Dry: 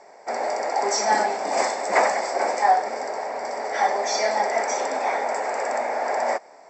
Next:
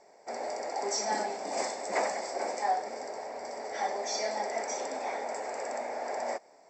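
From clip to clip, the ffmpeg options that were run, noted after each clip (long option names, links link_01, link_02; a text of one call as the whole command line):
ffmpeg -i in.wav -af "equalizer=frequency=1300:width=0.61:gain=-7.5,volume=-6dB" out.wav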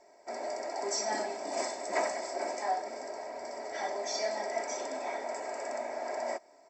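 ffmpeg -i in.wav -af "aecho=1:1:3.1:0.53,volume=-2.5dB" out.wav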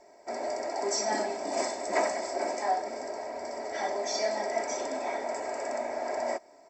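ffmpeg -i in.wav -af "lowshelf=frequency=310:gain=6,volume=2.5dB" out.wav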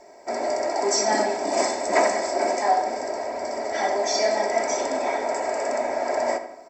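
ffmpeg -i in.wav -filter_complex "[0:a]asplit=2[link_01][link_02];[link_02]adelay=81,lowpass=frequency=3400:poles=1,volume=-10dB,asplit=2[link_03][link_04];[link_04]adelay=81,lowpass=frequency=3400:poles=1,volume=0.51,asplit=2[link_05][link_06];[link_06]adelay=81,lowpass=frequency=3400:poles=1,volume=0.51,asplit=2[link_07][link_08];[link_08]adelay=81,lowpass=frequency=3400:poles=1,volume=0.51,asplit=2[link_09][link_10];[link_10]adelay=81,lowpass=frequency=3400:poles=1,volume=0.51,asplit=2[link_11][link_12];[link_12]adelay=81,lowpass=frequency=3400:poles=1,volume=0.51[link_13];[link_01][link_03][link_05][link_07][link_09][link_11][link_13]amix=inputs=7:normalize=0,volume=7.5dB" out.wav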